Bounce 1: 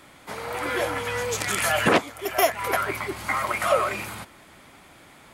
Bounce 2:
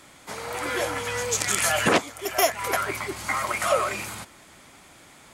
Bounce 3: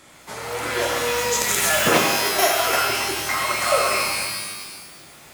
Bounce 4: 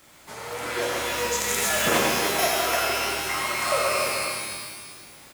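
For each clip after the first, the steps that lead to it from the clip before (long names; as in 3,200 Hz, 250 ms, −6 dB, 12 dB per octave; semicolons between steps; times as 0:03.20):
parametric band 6,900 Hz +8 dB 1.2 octaves; level −1.5 dB
reverb with rising layers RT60 1.3 s, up +12 semitones, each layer −2 dB, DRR 0 dB
bit-depth reduction 8 bits, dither none; single-tap delay 300 ms −8 dB; convolution reverb RT60 0.90 s, pre-delay 78 ms, DRR 5 dB; level −5.5 dB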